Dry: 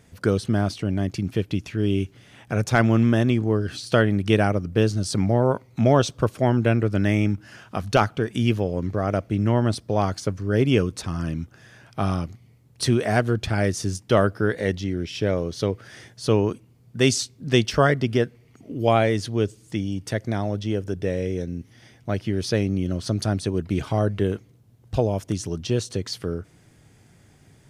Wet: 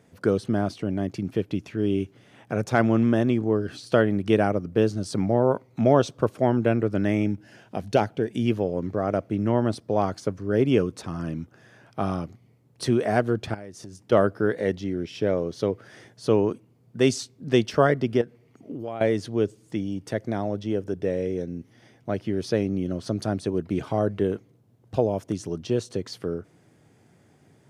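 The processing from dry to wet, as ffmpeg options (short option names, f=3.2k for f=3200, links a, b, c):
-filter_complex "[0:a]asettb=1/sr,asplit=3[a][b][c];[a]atrim=end=7.234[d];[b]atrim=start=7.23:end=8.46,asetpts=PTS-STARTPTS,afade=t=in:d=0.004:c=qsin,afade=t=out:st=1.226:d=0.004:c=qsin,equalizer=f=1.2k:t=o:w=0.46:g=-12[e];[c]atrim=start=8.456[f];[d][e]acrossfade=d=0.004:c1=hsin:c2=qsin[g];[g][f]acrossfade=d=0.004:c1=qsin:c2=hsin,asettb=1/sr,asplit=3[h][i][j];[h]atrim=end=13.544[k];[i]atrim=start=13.54:end=14.12,asetpts=PTS-STARTPTS,afade=t=in:d=0.004:c=qsin,afade=t=out:st=0.576:d=0.004:c=qsin,acompressor=threshold=-32dB:ratio=16:attack=3.2:release=140:knee=1:detection=peak[l];[j]atrim=start=14.116[m];[k][l]acrossfade=d=0.004:c1=hsin:c2=qsin[n];[n][m]acrossfade=d=0.004:c1=qsin:c2=hsin,asettb=1/sr,asplit=3[o][p][q];[o]atrim=end=18.214[r];[p]atrim=start=18.21:end=19.01,asetpts=PTS-STARTPTS,afade=t=in:d=0.004:c=qsin,afade=t=out:st=0.796:d=0.004:c=qsin,acompressor=threshold=-28dB:ratio=6:attack=3.2:release=140:knee=1:detection=peak[s];[q]atrim=start=19.006[t];[r][s]acrossfade=d=0.004:c1=hsin:c2=qsin[u];[u][t]acrossfade=d=0.004:c1=qsin:c2=hsin,highpass=89,equalizer=f=460:w=0.33:g=8.5,volume=-8dB"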